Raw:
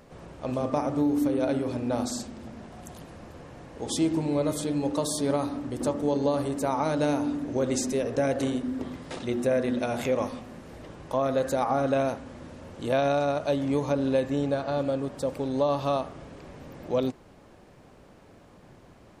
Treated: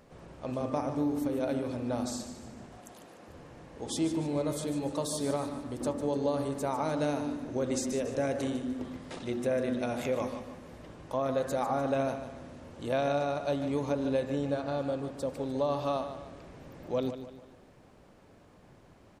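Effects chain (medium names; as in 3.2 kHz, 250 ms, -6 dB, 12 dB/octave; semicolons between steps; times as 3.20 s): 2.77–3.28 s: high-pass 260 Hz 12 dB/octave; feedback delay 149 ms, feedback 42%, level -10.5 dB; trim -5 dB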